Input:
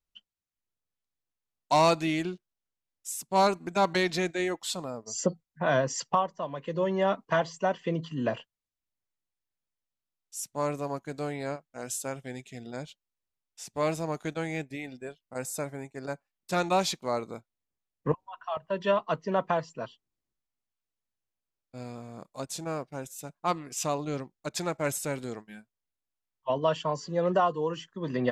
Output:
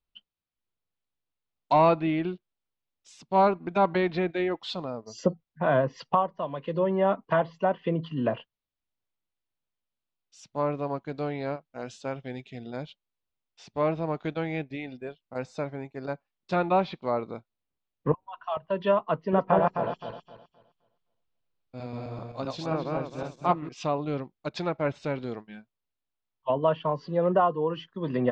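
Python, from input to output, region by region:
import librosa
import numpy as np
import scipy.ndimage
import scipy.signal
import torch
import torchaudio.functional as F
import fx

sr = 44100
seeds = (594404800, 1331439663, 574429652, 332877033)

y = fx.chain(x, sr, fx.reverse_delay_fb(ms=130, feedback_pct=51, wet_db=-0.5),
    fx.high_shelf(hz=11000.0, db=3.5), at=(19.2, 23.69))
y = scipy.signal.sosfilt(scipy.signal.butter(4, 4200.0, 'lowpass', fs=sr, output='sos'), y)
y = fx.env_lowpass_down(y, sr, base_hz=2100.0, full_db=-24.5)
y = fx.peak_eq(y, sr, hz=1800.0, db=-4.0, octaves=0.65)
y = y * 10.0 ** (2.5 / 20.0)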